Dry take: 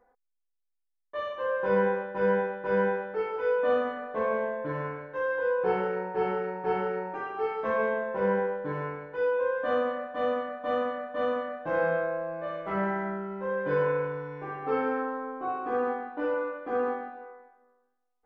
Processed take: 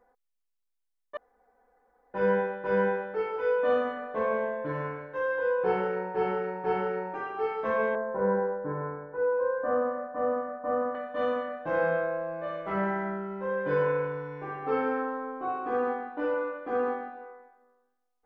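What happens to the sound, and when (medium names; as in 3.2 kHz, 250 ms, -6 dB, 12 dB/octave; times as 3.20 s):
1.17–2.14 s: room tone
7.95–10.95 s: low-pass 1.5 kHz 24 dB/octave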